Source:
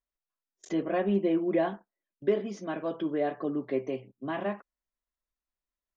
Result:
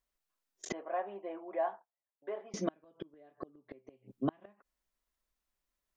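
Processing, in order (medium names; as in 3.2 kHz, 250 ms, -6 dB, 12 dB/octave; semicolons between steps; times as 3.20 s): 0.72–2.54 s: ladder band-pass 940 Hz, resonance 45%; inverted gate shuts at -25 dBFS, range -36 dB; trim +5.5 dB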